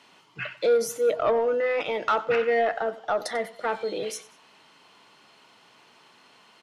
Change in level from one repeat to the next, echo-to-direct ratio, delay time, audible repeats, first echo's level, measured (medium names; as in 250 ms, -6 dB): -8.0 dB, -17.5 dB, 94 ms, 2, -18.0 dB